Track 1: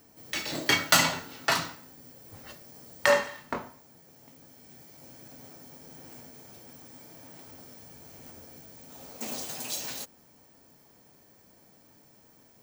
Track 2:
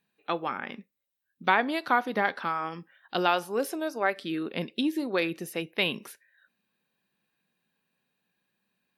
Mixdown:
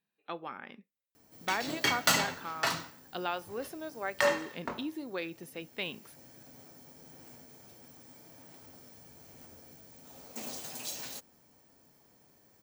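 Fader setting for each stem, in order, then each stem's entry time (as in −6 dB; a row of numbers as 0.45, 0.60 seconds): −5.0, −10.0 decibels; 1.15, 0.00 seconds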